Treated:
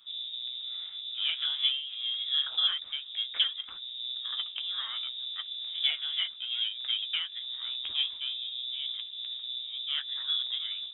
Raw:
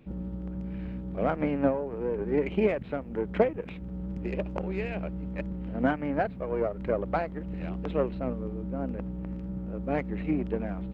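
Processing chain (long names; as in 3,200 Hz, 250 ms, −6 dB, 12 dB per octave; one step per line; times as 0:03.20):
flanger 1.1 Hz, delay 8 ms, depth 8 ms, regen −40%
voice inversion scrambler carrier 3,700 Hz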